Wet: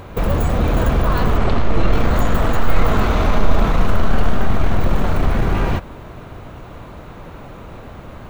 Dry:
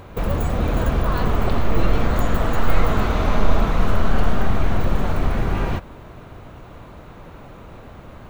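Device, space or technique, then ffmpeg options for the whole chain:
parallel distortion: -filter_complex "[0:a]asplit=3[link_01][link_02][link_03];[link_01]afade=type=out:start_time=1.37:duration=0.02[link_04];[link_02]lowpass=7100,afade=type=in:start_time=1.37:duration=0.02,afade=type=out:start_time=1.91:duration=0.02[link_05];[link_03]afade=type=in:start_time=1.91:duration=0.02[link_06];[link_04][link_05][link_06]amix=inputs=3:normalize=0,asplit=2[link_07][link_08];[link_08]asoftclip=type=hard:threshold=-18dB,volume=-5.5dB[link_09];[link_07][link_09]amix=inputs=2:normalize=0,volume=1dB"

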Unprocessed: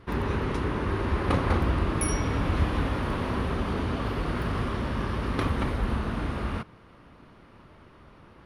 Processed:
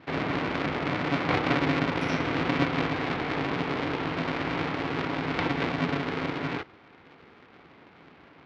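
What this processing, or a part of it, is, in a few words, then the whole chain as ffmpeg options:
ring modulator pedal into a guitar cabinet: -af "aeval=exprs='val(0)*sgn(sin(2*PI*210*n/s))':channel_layout=same,highpass=110,equalizer=frequency=120:width_type=q:width=4:gain=-5,equalizer=frequency=590:width_type=q:width=4:gain=-4,equalizer=frequency=2200:width_type=q:width=4:gain=5,lowpass=frequency=4300:width=0.5412,lowpass=frequency=4300:width=1.3066"

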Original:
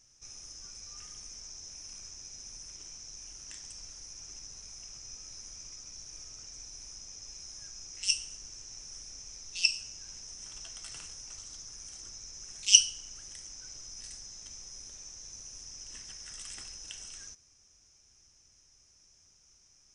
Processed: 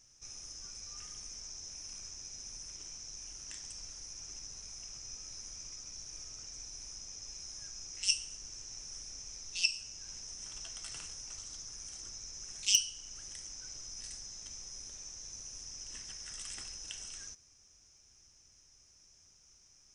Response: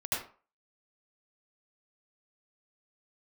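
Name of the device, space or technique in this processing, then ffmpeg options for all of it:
clipper into limiter: -af "asoftclip=type=hard:threshold=-6.5dB,alimiter=limit=-14.5dB:level=0:latency=1:release=464"

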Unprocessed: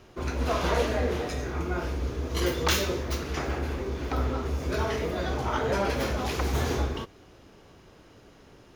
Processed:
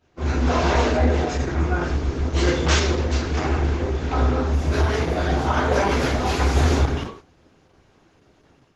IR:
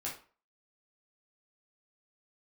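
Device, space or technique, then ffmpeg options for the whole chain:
speakerphone in a meeting room: -filter_complex "[1:a]atrim=start_sample=2205[link_01];[0:a][link_01]afir=irnorm=-1:irlink=0,dynaudnorm=framelen=120:gausssize=3:maxgain=6.5dB,agate=range=-10dB:threshold=-39dB:ratio=16:detection=peak" -ar 48000 -c:a libopus -b:a 12k

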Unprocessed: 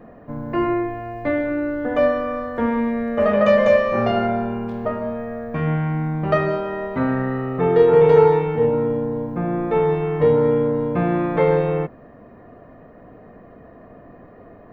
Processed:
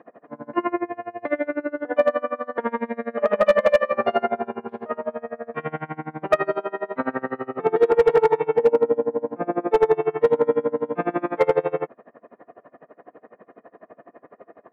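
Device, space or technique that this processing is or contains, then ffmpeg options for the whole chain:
helicopter radio: -filter_complex "[0:a]asettb=1/sr,asplit=3[link_01][link_02][link_03];[link_01]atrim=end=8.454[link_04];[link_02]atrim=start=8.45:end=10.1,asetpts=PTS-STARTPTS,afade=type=in:duration=0.004:curve=qsin,afade=type=out:start_time=1.646:duration=0.004:curve=qsin,equalizer=frequency=520:width=1.1:gain=5[link_05];[link_03]atrim=start=10.096[link_06];[link_04][link_05]acrossfade=duration=0.004:curve1=hsin:curve2=qsin[link_07];[link_07][link_06]acrossfade=duration=0.004:curve1=qsin:curve2=hsin,highpass=370,lowpass=2600,aeval=exprs='val(0)*pow(10,-27*(0.5-0.5*cos(2*PI*12*n/s))/20)':channel_layout=same,asoftclip=type=hard:threshold=-13.5dB,volume=5dB"

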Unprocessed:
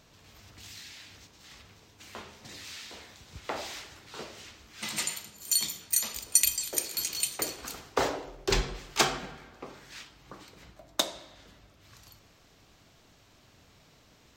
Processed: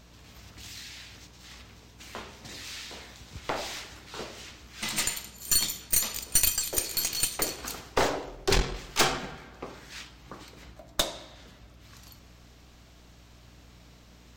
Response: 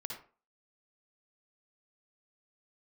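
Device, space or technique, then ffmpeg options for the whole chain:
valve amplifier with mains hum: -af "aeval=exprs='(tanh(14.1*val(0)+0.7)-tanh(0.7))/14.1':channel_layout=same,aeval=exprs='val(0)+0.000891*(sin(2*PI*60*n/s)+sin(2*PI*2*60*n/s)/2+sin(2*PI*3*60*n/s)/3+sin(2*PI*4*60*n/s)/4+sin(2*PI*5*60*n/s)/5)':channel_layout=same,volume=7dB"

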